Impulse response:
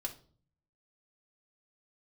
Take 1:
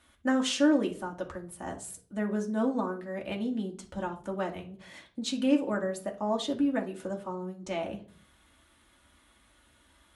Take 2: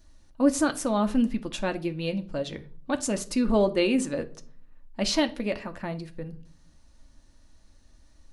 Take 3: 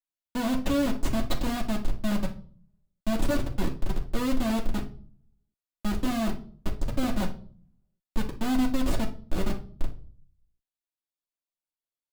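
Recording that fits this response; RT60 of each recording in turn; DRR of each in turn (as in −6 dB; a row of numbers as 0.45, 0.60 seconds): 1; 0.45, 0.45, 0.45 seconds; 0.0, 7.0, −6.0 decibels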